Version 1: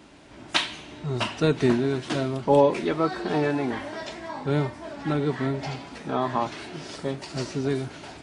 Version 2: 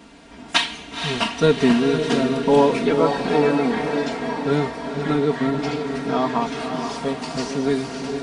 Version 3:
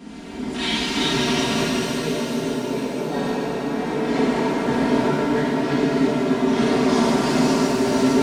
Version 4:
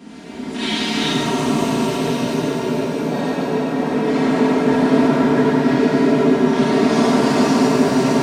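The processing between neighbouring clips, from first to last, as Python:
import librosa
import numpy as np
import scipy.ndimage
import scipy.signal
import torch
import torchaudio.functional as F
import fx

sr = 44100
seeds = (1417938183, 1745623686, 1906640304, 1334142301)

y1 = x + 0.71 * np.pad(x, (int(4.3 * sr / 1000.0), 0))[:len(x)]
y1 = fx.echo_diffused(y1, sr, ms=509, feedback_pct=53, wet_db=-6)
y1 = y1 * librosa.db_to_amplitude(3.0)
y2 = fx.peak_eq(y1, sr, hz=210.0, db=9.5, octaves=1.0)
y2 = fx.over_compress(y2, sr, threshold_db=-25.0, ratio=-1.0)
y2 = fx.rev_shimmer(y2, sr, seeds[0], rt60_s=3.5, semitones=7, shimmer_db=-8, drr_db=-9.5)
y2 = y2 * librosa.db_to_amplitude(-8.5)
y3 = fx.spec_repair(y2, sr, seeds[1], start_s=1.16, length_s=0.91, low_hz=1400.0, high_hz=5900.0, source='after')
y3 = scipy.signal.sosfilt(scipy.signal.butter(2, 83.0, 'highpass', fs=sr, output='sos'), y3)
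y3 = fx.rev_freeverb(y3, sr, rt60_s=4.6, hf_ratio=0.25, predelay_ms=50, drr_db=-0.5)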